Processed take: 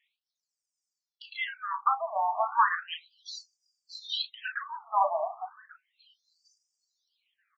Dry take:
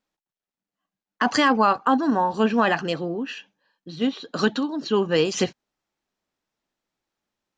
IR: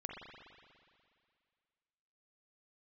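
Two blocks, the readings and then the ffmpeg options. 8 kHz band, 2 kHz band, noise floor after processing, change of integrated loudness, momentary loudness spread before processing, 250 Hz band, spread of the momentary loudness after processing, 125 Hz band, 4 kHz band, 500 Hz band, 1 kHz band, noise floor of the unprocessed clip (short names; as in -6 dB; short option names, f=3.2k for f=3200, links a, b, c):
-17.0 dB, -7.5 dB, under -85 dBFS, -7.5 dB, 10 LU, under -40 dB, 17 LU, under -40 dB, -6.5 dB, -13.0 dB, -4.5 dB, under -85 dBFS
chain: -filter_complex "[0:a]areverse,acompressor=threshold=-29dB:ratio=8,areverse,highpass=f=580:t=q:w=3.8,acrossover=split=4300[a][b];[b]acompressor=threshold=-56dB:ratio=4:attack=1:release=60[c];[a][c]amix=inputs=2:normalize=0,alimiter=limit=-23dB:level=0:latency=1:release=283,asplit=2[d][e];[e]adelay=36,volume=-8dB[f];[d][f]amix=inputs=2:normalize=0,asplit=2[g][h];[h]adelay=1137,lowpass=f=1.6k:p=1,volume=-16dB,asplit=2[i][j];[j]adelay=1137,lowpass=f=1.6k:p=1,volume=0.35,asplit=2[k][l];[l]adelay=1137,lowpass=f=1.6k:p=1,volume=0.35[m];[g][i][k][m]amix=inputs=4:normalize=0,aphaser=in_gain=1:out_gain=1:delay=1.5:decay=0.7:speed=0.39:type=sinusoidal,afftfilt=real='re*between(b*sr/1024,830*pow(6700/830,0.5+0.5*sin(2*PI*0.34*pts/sr))/1.41,830*pow(6700/830,0.5+0.5*sin(2*PI*0.34*pts/sr))*1.41)':imag='im*between(b*sr/1024,830*pow(6700/830,0.5+0.5*sin(2*PI*0.34*pts/sr))/1.41,830*pow(6700/830,0.5+0.5*sin(2*PI*0.34*pts/sr))*1.41)':win_size=1024:overlap=0.75,volume=7.5dB"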